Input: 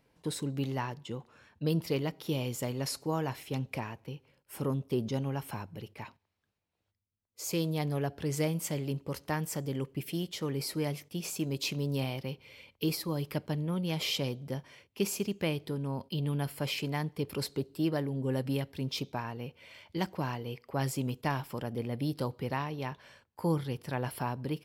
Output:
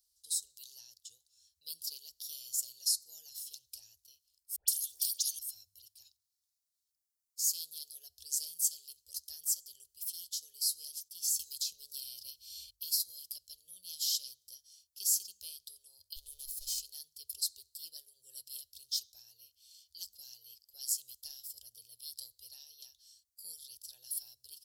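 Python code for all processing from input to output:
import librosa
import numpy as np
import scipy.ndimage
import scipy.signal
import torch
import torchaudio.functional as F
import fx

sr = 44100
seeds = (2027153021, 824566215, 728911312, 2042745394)

y = fx.chain(x, sr, fx.notch_comb(f0_hz=1300.0),
    fx.dispersion(late='highs', ms=121.0, hz=1400.0),
    fx.spectral_comp(ratio=4.0), at=(4.56, 5.39))
y = fx.chain(y, sr, fx.low_shelf(hz=360.0, db=5.5),
    fx.band_squash(depth_pct=100), at=(11.39, 12.71))
y = fx.chain(y, sr, fx.lower_of_two(delay_ms=1.6),
    fx.low_shelf(hz=190.0, db=8.0), at=(16.16, 16.8))
y = scipy.signal.sosfilt(scipy.signal.cheby2(4, 40, [130.0, 2300.0], 'bandstop', fs=sr, output='sos'), y)
y = fx.bass_treble(y, sr, bass_db=-13, treble_db=9)
y = fx.hum_notches(y, sr, base_hz=50, count=4)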